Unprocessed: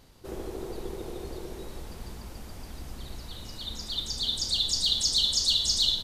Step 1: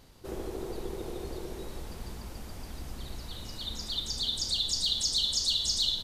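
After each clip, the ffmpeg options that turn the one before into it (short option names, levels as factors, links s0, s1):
-af "acompressor=threshold=0.0282:ratio=1.5"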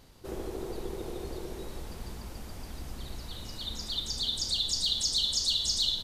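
-af anull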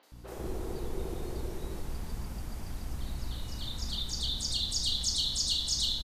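-filter_complex "[0:a]lowshelf=f=150:g=5,aeval=exprs='val(0)+0.00398*(sin(2*PI*60*n/s)+sin(2*PI*2*60*n/s)/2+sin(2*PI*3*60*n/s)/3+sin(2*PI*4*60*n/s)/4+sin(2*PI*5*60*n/s)/5)':c=same,acrossover=split=420|3700[s0][s1][s2];[s2]adelay=30[s3];[s0]adelay=120[s4];[s4][s1][s3]amix=inputs=3:normalize=0"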